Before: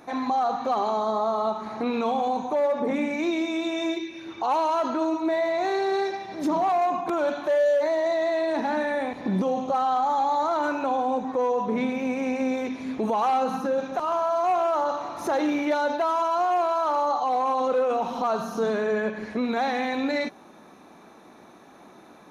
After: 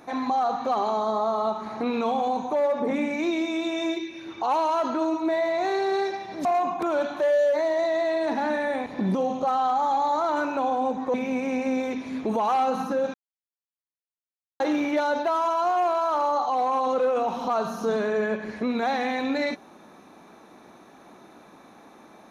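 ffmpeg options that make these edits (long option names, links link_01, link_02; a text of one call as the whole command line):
ffmpeg -i in.wav -filter_complex "[0:a]asplit=5[link_01][link_02][link_03][link_04][link_05];[link_01]atrim=end=6.452[link_06];[link_02]atrim=start=6.718:end=11.412[link_07];[link_03]atrim=start=11.878:end=13.88,asetpts=PTS-STARTPTS,afade=type=out:start_time=1.998:duration=0.004:curve=hsin[link_08];[link_04]atrim=start=13.88:end=15.34,asetpts=PTS-STARTPTS,volume=0[link_09];[link_05]atrim=start=15.34,asetpts=PTS-STARTPTS,afade=type=in:duration=0.004:curve=hsin[link_10];[link_06][link_07]acrossfade=duration=0.004:curve1=hsin:curve2=hsin[link_11];[link_08][link_09][link_10]concat=n=3:v=0:a=1[link_12];[link_11][link_12]acrossfade=duration=0.004:curve1=hsin:curve2=hsin" out.wav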